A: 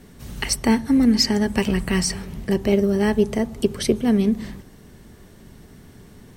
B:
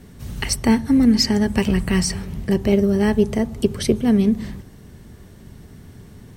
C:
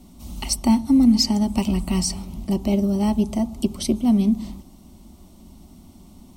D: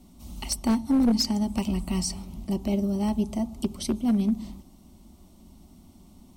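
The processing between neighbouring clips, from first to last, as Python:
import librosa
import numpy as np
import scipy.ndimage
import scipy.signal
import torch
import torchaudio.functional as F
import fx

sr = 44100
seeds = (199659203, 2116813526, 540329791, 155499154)

y1 = fx.peak_eq(x, sr, hz=90.0, db=7.0, octaves=1.8)
y2 = fx.fixed_phaser(y1, sr, hz=450.0, stages=6)
y3 = np.minimum(y2, 2.0 * 10.0 ** (-12.0 / 20.0) - y2)
y3 = F.gain(torch.from_numpy(y3), -5.5).numpy()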